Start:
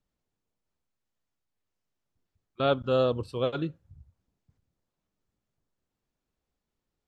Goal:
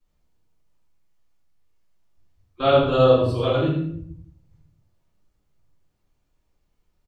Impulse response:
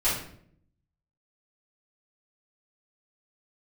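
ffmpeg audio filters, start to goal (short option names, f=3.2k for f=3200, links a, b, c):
-filter_complex "[0:a]aecho=1:1:81:0.422[a];[1:a]atrim=start_sample=2205[b];[a][b]afir=irnorm=-1:irlink=0,volume=-3.5dB"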